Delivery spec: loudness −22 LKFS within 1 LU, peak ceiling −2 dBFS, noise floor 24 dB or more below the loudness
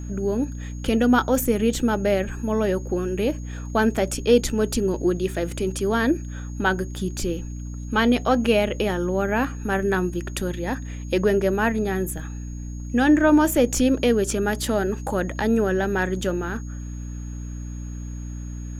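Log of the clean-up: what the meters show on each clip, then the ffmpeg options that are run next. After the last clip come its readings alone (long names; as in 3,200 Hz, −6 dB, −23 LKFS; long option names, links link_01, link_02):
mains hum 60 Hz; hum harmonics up to 300 Hz; level of the hum −30 dBFS; interfering tone 6,600 Hz; level of the tone −48 dBFS; integrated loudness −23.0 LKFS; sample peak −6.0 dBFS; target loudness −22.0 LKFS
→ -af "bandreject=frequency=60:width_type=h:width=4,bandreject=frequency=120:width_type=h:width=4,bandreject=frequency=180:width_type=h:width=4,bandreject=frequency=240:width_type=h:width=4,bandreject=frequency=300:width_type=h:width=4"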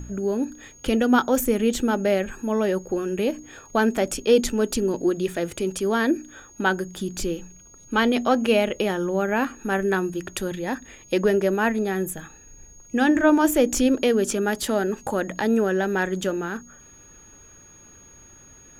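mains hum none found; interfering tone 6,600 Hz; level of the tone −48 dBFS
→ -af "bandreject=frequency=6600:width=30"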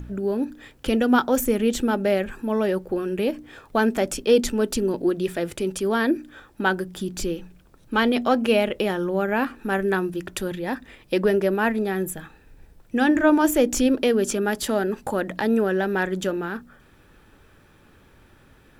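interfering tone none found; integrated loudness −23.5 LKFS; sample peak −6.5 dBFS; target loudness −22.0 LKFS
→ -af "volume=1.5dB"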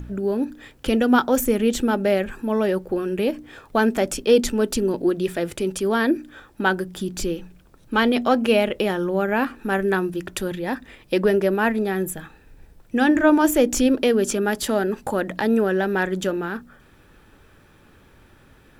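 integrated loudness −22.0 LKFS; sample peak −5.0 dBFS; background noise floor −53 dBFS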